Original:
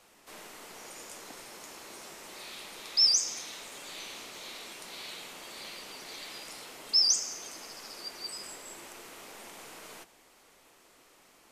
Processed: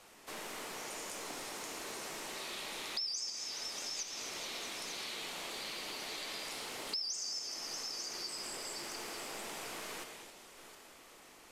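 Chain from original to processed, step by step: backward echo that repeats 448 ms, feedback 45%, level -9.5 dB; in parallel at +2 dB: level held to a coarse grid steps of 17 dB; on the sum: repeats whose band climbs or falls 212 ms, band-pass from 2.7 kHz, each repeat 0.7 oct, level -12 dB; gated-style reverb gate 290 ms flat, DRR 6.5 dB; compression 5:1, threshold -36 dBFS, peak gain reduction 16.5 dB; loudspeaker Doppler distortion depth 0.13 ms; trim -2 dB

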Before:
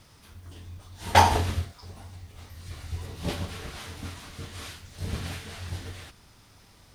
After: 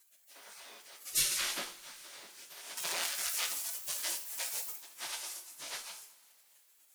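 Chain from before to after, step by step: 2.77–4.76 s: power-law waveshaper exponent 0.5; spectral gate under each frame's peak -30 dB weak; two-slope reverb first 0.43 s, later 3.5 s, from -22 dB, DRR 2.5 dB; trim +6 dB

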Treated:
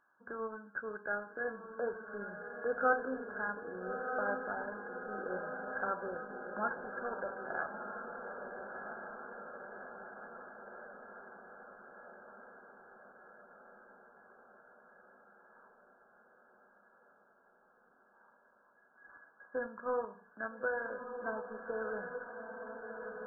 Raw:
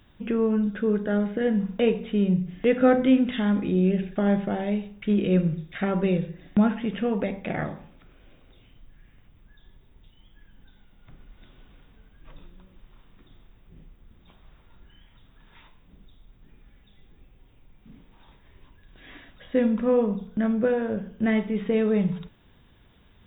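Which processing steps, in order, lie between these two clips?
high-pass 860 Hz 6 dB/octave; differentiator; in parallel at -5 dB: small samples zeroed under -50 dBFS; on the sum: brick-wall FIR low-pass 1.7 kHz; on a send: echo that smears into a reverb 1302 ms, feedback 66%, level -6 dB; on the sum: trim +12 dB

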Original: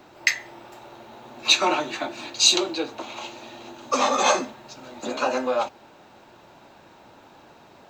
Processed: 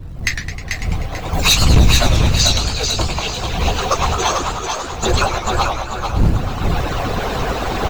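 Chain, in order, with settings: harmonic-percussive separation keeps percussive; recorder AGC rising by 21 dB/s; wind noise 88 Hz -23 dBFS; 1.33–2.17 s: tone controls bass +14 dB, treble +11 dB; in parallel at -6 dB: short-mantissa float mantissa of 2-bit; on the sum: overload inside the chain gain 6 dB; on a send: feedback delay 440 ms, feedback 36%, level -5 dB; on the sum: modulated delay 103 ms, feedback 63%, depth 189 cents, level -8.5 dB; trim -2 dB

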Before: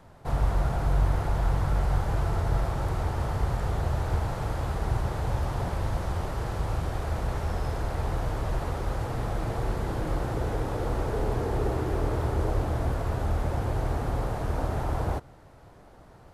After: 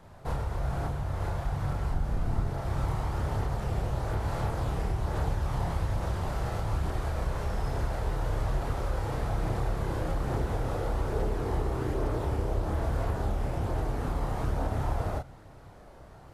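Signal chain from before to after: 1.89–2.47 s: octave divider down 1 oct, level +4 dB; compression 6:1, threshold -27 dBFS, peak gain reduction 11.5 dB; chorus voices 2, 0.58 Hz, delay 30 ms, depth 1.1 ms; trim +4 dB

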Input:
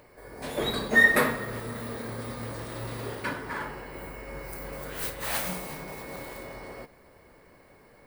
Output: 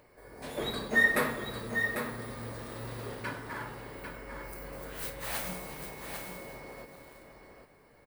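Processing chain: delay 797 ms -7 dB; trim -5.5 dB

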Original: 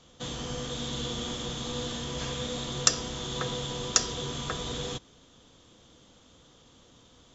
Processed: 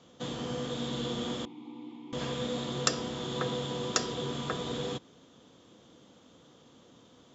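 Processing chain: high-pass 190 Hz 12 dB/octave; dynamic bell 6.1 kHz, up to -7 dB, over -53 dBFS, Q 6.1; 1.45–2.13 s: vowel filter u; tilt EQ -2 dB/octave

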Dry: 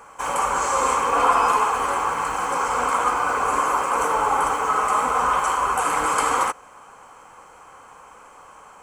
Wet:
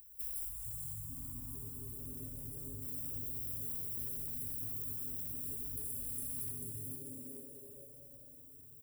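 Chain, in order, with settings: rattle on loud lows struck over -45 dBFS, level -14 dBFS; inverse Chebyshev band-stop 230–5200 Hz, stop band 70 dB; gain riding 0.5 s; 0.49–2.82 s: treble shelf 9 kHz -9 dB; frequency-shifting echo 442 ms, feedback 37%, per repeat -150 Hz, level -8 dB; saturation -35.5 dBFS, distortion -27 dB; high-pass 120 Hz 12 dB/octave; compression 3:1, threshold -59 dBFS, peak gain reduction 7.5 dB; tilt shelf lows -4 dB, about 700 Hz; Schroeder reverb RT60 2.1 s, combs from 26 ms, DRR 2 dB; trim +16 dB

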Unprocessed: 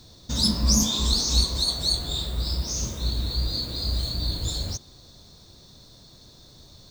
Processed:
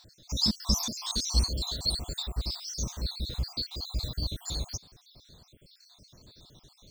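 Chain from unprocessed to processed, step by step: random holes in the spectrogram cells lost 59%; trim -2.5 dB

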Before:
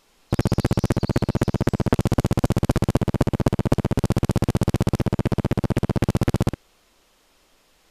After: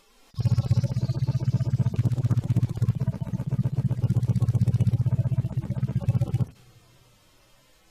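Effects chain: harmonic-percussive separation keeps harmonic; two-slope reverb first 0.55 s, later 4.9 s, from -17 dB, DRR 19 dB; 1.96–2.75 s: loudspeaker Doppler distortion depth 0.42 ms; trim +4 dB

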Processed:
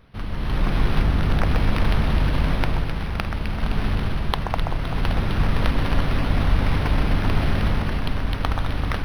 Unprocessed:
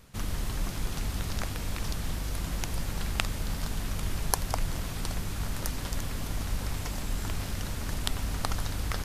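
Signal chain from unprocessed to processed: treble shelf 11 kHz -10.5 dB; level rider gain up to 9.5 dB; 1.02–1.50 s: distance through air 140 m; echo whose repeats swap between lows and highs 129 ms, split 1.8 kHz, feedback 75%, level -5 dB; decimation joined by straight lines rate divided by 6×; trim +2.5 dB

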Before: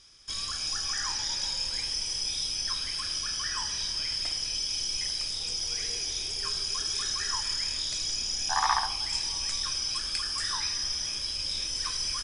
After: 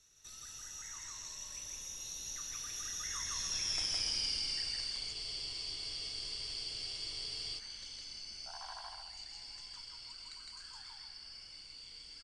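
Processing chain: Doppler pass-by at 3.91 s, 41 m/s, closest 18 m; loudspeakers at several distances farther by 55 m -1 dB, 100 m -10 dB; spectral freeze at 5.15 s, 2.43 s; three bands compressed up and down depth 40%; trim -3 dB

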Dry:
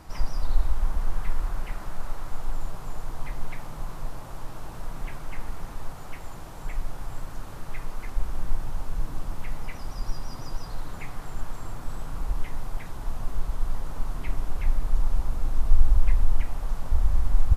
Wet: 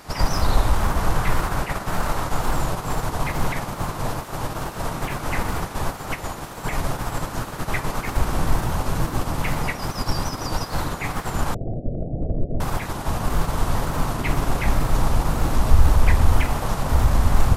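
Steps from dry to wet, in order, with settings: spectral peaks clipped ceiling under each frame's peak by 20 dB; 11.54–12.60 s: steep low-pass 690 Hz 96 dB/octave; in parallel at -9.5 dB: overload inside the chain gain 21.5 dB; on the sum: wow and flutter 68 cents

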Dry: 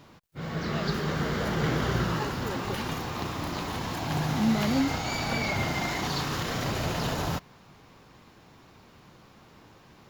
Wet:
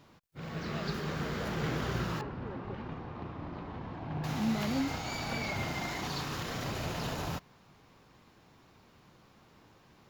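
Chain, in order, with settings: rattle on loud lows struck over -32 dBFS, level -34 dBFS; 2.21–4.24 s: tape spacing loss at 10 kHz 43 dB; trim -6.5 dB

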